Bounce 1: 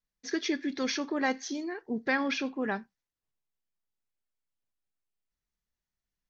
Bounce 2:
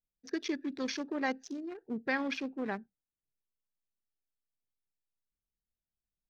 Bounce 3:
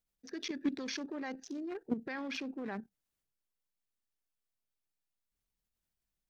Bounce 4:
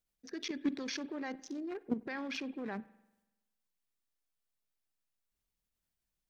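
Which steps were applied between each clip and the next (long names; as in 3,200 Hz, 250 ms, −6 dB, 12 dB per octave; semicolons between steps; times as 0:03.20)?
adaptive Wiener filter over 41 samples; level −3.5 dB
brickwall limiter −31.5 dBFS, peak gain reduction 11.5 dB; output level in coarse steps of 12 dB; level +8.5 dB
convolution reverb RT60 1.0 s, pre-delay 47 ms, DRR 19 dB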